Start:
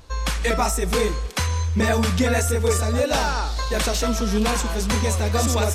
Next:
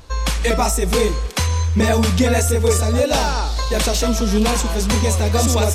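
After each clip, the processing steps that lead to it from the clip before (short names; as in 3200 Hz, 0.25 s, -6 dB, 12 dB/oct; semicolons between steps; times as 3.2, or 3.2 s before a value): dynamic EQ 1500 Hz, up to -5 dB, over -36 dBFS, Q 1.4; gain +4.5 dB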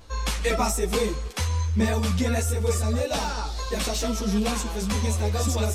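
vocal rider 2 s; ensemble effect; gain -5.5 dB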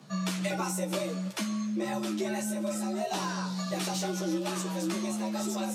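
compressor, threshold -24 dBFS, peak gain reduction 6.5 dB; resonator 64 Hz, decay 0.17 s, harmonics all, mix 70%; frequency shift +130 Hz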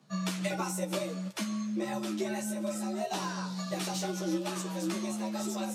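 upward expander 1.5:1, over -48 dBFS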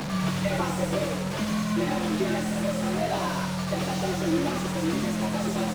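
delta modulation 64 kbps, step -31 dBFS; frequency-shifting echo 97 ms, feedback 47%, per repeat -42 Hz, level -6 dB; slew limiter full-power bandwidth 36 Hz; gain +6 dB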